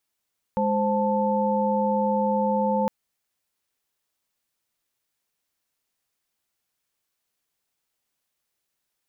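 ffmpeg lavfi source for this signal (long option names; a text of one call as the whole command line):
ffmpeg -f lavfi -i "aevalsrc='0.0596*(sin(2*PI*207.65*t)+sin(2*PI*523.25*t)+sin(2*PI*880*t))':duration=2.31:sample_rate=44100" out.wav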